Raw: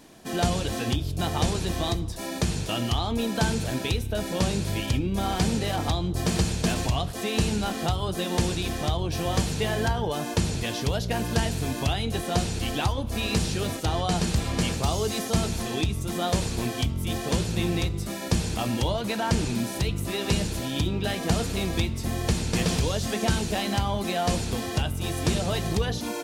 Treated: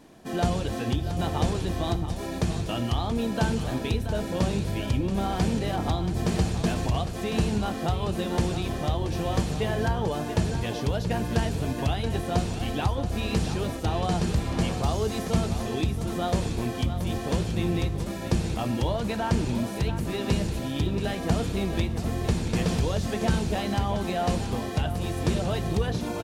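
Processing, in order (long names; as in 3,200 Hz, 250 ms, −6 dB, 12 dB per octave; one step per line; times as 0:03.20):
high-shelf EQ 2,200 Hz −8 dB
single-tap delay 679 ms −10 dB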